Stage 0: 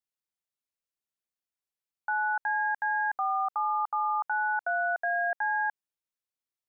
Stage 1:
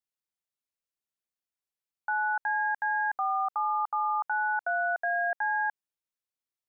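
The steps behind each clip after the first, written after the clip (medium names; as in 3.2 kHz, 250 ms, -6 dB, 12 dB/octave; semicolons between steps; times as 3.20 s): no audible change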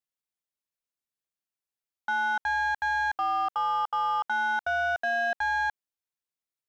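waveshaping leveller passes 1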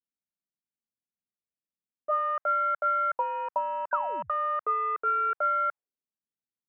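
painted sound fall, 3.91–4.32 s, 280–1900 Hz -31 dBFS; mistuned SSB -260 Hz 160–2700 Hz; auto-wah 200–1700 Hz, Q 2, up, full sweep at -23.5 dBFS; trim +5.5 dB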